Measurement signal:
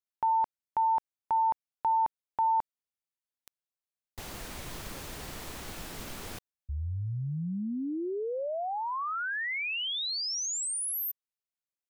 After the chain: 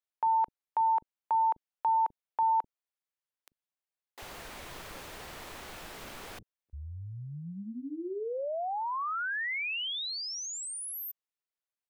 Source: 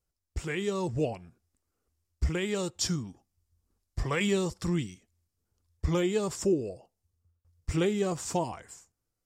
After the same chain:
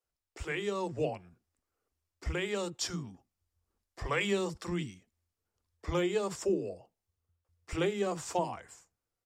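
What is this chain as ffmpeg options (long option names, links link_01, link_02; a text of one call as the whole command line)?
ffmpeg -i in.wav -filter_complex "[0:a]bass=frequency=250:gain=-8,treble=frequency=4000:gain=-6,acrossover=split=280[link_01][link_02];[link_01]adelay=40[link_03];[link_03][link_02]amix=inputs=2:normalize=0" out.wav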